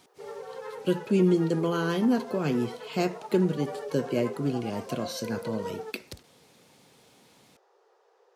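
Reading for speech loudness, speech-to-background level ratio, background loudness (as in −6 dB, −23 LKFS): −28.5 LKFS, 11.5 dB, −40.0 LKFS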